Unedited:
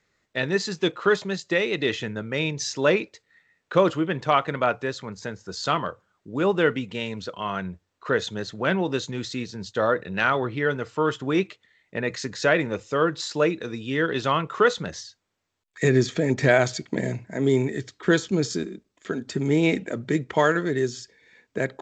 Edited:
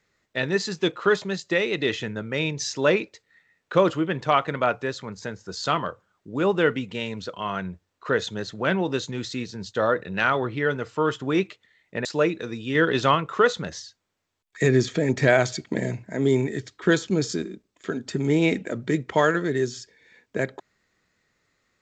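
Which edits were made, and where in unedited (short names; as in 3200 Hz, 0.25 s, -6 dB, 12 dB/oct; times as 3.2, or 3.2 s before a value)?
12.05–13.26 cut
13.96–14.36 gain +3.5 dB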